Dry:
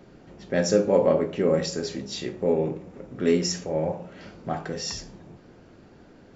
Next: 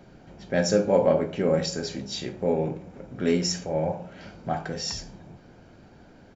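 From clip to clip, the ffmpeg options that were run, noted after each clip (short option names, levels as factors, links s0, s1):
-af "aecho=1:1:1.3:0.31"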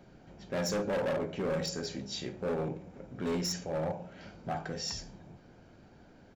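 -af "volume=14.1,asoftclip=hard,volume=0.0708,volume=0.531"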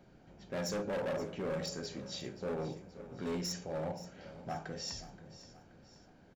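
-af "aecho=1:1:526|1052|1578|2104:0.168|0.0739|0.0325|0.0143,volume=0.596"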